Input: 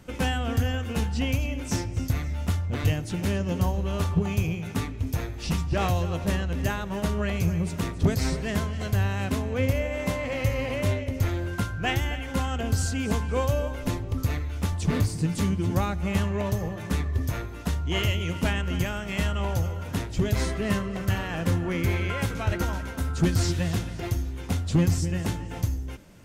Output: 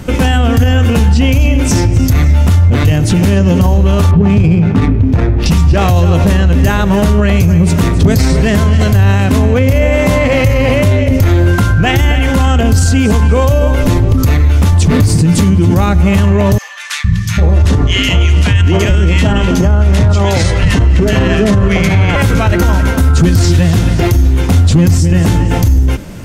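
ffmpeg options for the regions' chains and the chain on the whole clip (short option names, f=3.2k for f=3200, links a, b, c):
-filter_complex "[0:a]asettb=1/sr,asplit=3[a][b][c];[a]atrim=end=4.114[d];[b]atrim=start=4.11:end=5.46,asetpts=PTS-STARTPTS,afade=t=in:d=0.004:c=qsin,afade=t=out:st=1.346:d=0.004:c=qsin,equalizer=f=200:t=o:w=1.4:g=3.5,adynamicsmooth=sensitivity=5:basefreq=1.3k[e];[c]atrim=start=5.456[f];[d][e]acrossfade=d=0.004:c1=hsin:c2=qsin[g];[g][f]acrossfade=d=0.004:c1=qsin:c2=hsin,asettb=1/sr,asplit=3[h][i][j];[h]atrim=end=16.584[k];[i]atrim=start=16.58:end=22.16,asetpts=PTS-STARTPTS,afade=t=in:d=0.004:c=qsin,afade=t=out:st=5.576:d=0.004:c=qsin,lowpass=8.1k,acrossover=split=160|1400[l][m][n];[l]adelay=460[o];[m]adelay=800[p];[o][p][n]amix=inputs=3:normalize=0,atrim=end_sample=246078[q];[j]atrim=start=22.156[r];[k][q]acrossfade=d=0.004:c1=hsin:c2=qsin[s];[s][r]acrossfade=d=0.004:c1=qsin:c2=hsin,lowshelf=f=340:g=5,alimiter=level_in=21.5dB:limit=-1dB:release=50:level=0:latency=1,volume=-1dB"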